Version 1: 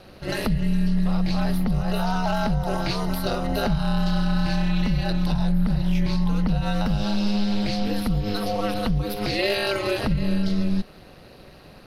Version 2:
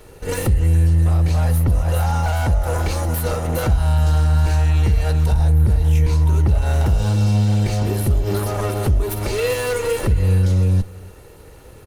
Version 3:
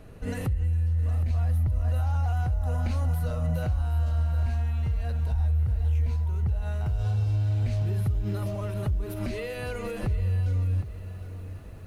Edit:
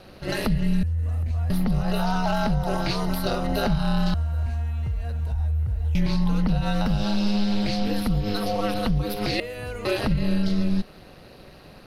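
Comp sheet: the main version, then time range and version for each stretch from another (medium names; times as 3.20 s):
1
0.83–1.50 s: from 3
4.14–5.95 s: from 3
9.40–9.85 s: from 3
not used: 2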